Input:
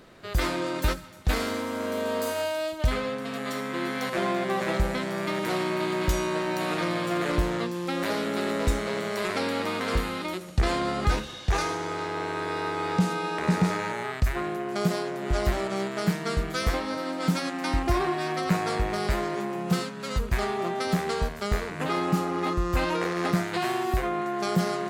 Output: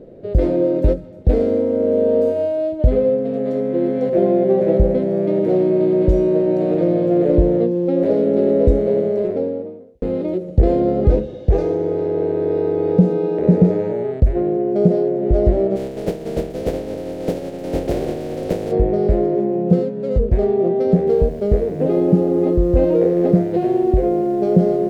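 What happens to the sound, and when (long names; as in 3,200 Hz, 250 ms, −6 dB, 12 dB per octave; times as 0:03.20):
0:08.90–0:10.02: fade out and dull
0:15.75–0:18.71: compressing power law on the bin magnitudes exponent 0.21
0:21.07: noise floor change −69 dB −40 dB
whole clip: low-pass filter 1,100 Hz 6 dB per octave; low shelf with overshoot 760 Hz +13.5 dB, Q 3; level −3.5 dB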